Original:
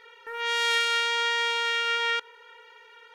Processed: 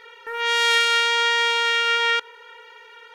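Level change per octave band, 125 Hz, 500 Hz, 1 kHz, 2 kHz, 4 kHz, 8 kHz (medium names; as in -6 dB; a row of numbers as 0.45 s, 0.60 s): no reading, +6.0 dB, +6.0 dB, +6.0 dB, +6.0 dB, +6.0 dB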